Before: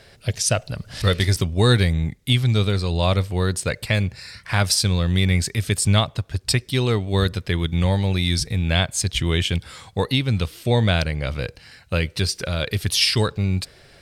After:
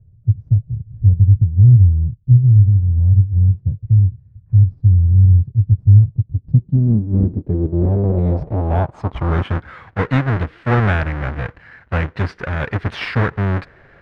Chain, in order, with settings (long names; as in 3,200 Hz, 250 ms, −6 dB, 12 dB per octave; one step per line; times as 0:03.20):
each half-wave held at its own peak
dynamic equaliser 170 Hz, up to +4 dB, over −24 dBFS, Q 0.85
low-pass filter sweep 110 Hz → 1,700 Hz, 0:06.03–0:09.72
level −4 dB